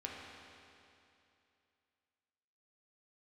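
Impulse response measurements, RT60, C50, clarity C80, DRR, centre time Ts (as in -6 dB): 2.7 s, -0.5 dB, 1.0 dB, -3.0 dB, 131 ms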